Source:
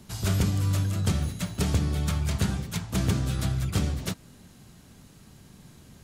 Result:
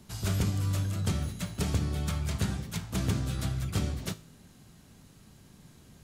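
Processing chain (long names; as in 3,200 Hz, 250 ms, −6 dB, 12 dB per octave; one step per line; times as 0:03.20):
tuned comb filter 53 Hz, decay 0.42 s, harmonics all, mix 50%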